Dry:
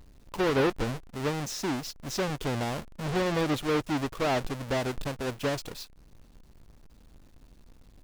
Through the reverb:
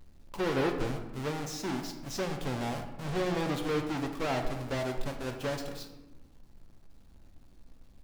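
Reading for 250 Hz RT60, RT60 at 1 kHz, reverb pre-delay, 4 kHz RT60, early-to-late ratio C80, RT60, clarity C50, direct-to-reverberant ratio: 1.6 s, 0.95 s, 4 ms, 0.60 s, 9.0 dB, 1.1 s, 7.0 dB, 3.5 dB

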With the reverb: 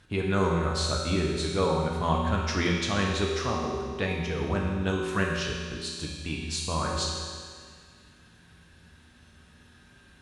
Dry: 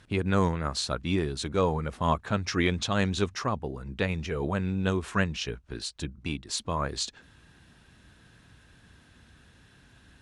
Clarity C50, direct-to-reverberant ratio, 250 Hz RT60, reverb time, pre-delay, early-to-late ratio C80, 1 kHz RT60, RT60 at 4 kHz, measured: 1.0 dB, -1.5 dB, 1.9 s, 1.9 s, 5 ms, 2.5 dB, 1.9 s, 1.9 s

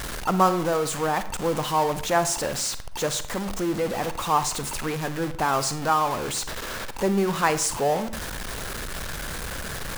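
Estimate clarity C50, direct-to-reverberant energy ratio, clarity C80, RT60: 12.5 dB, 11.5 dB, 16.5 dB, 0.55 s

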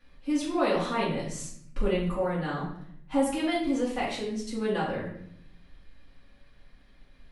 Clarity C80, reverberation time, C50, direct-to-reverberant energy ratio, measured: 7.5 dB, 0.70 s, 4.0 dB, -8.0 dB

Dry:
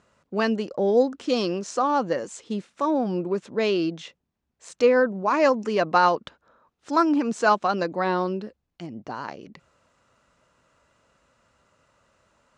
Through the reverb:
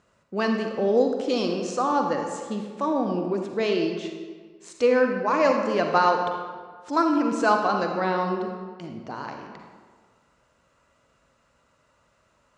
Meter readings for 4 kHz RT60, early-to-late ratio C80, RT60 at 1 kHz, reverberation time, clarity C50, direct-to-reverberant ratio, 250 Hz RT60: 1.0 s, 5.5 dB, 1.6 s, 1.6 s, 3.5 dB, 3.0 dB, 1.6 s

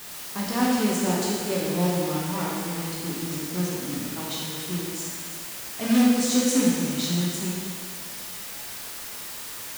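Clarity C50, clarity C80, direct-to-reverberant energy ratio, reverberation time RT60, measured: -1.5 dB, 0.5 dB, -5.0 dB, 1.9 s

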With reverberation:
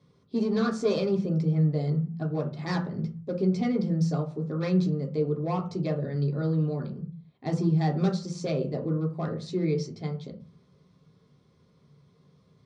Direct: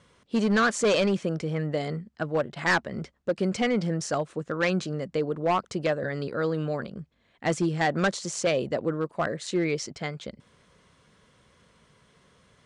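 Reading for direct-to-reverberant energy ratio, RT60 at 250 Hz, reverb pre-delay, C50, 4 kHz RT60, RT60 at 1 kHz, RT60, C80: -1.0 dB, n/a, 3 ms, 10.5 dB, 0.30 s, 0.40 s, 0.40 s, 16.0 dB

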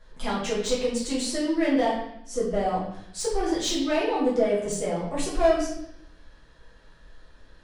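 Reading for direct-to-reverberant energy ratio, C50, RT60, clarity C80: -7.5 dB, 3.0 dB, 0.70 s, 6.0 dB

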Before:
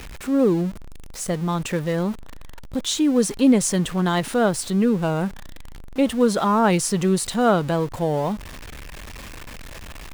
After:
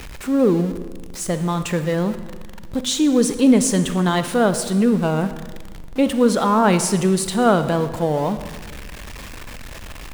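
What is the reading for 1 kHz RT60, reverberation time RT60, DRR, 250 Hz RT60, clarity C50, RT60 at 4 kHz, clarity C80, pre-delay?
1.4 s, 1.5 s, 10.5 dB, 1.6 s, 11.5 dB, 1.2 s, 13.0 dB, 29 ms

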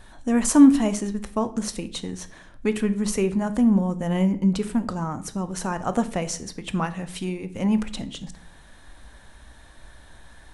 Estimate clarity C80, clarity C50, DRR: 19.5 dB, 16.0 dB, 11.0 dB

